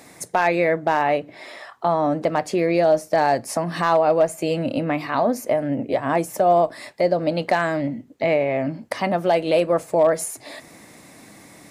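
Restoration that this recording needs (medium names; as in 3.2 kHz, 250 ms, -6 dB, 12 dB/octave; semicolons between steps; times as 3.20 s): clip repair -9 dBFS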